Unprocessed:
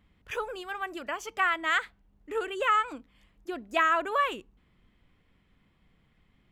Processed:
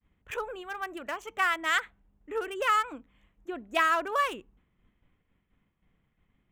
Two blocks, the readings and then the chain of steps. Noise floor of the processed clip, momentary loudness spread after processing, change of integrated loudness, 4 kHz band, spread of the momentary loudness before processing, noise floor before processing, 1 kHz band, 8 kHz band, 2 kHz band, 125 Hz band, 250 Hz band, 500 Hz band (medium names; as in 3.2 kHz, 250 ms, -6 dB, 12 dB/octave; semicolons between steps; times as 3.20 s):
-76 dBFS, 16 LU, -0.5 dB, +0.5 dB, 15 LU, -68 dBFS, -1.0 dB, +3.0 dB, -0.5 dB, no reading, -1.0 dB, -1.0 dB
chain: local Wiener filter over 9 samples; expander -60 dBFS; treble shelf 5 kHz +10.5 dB; trim -1 dB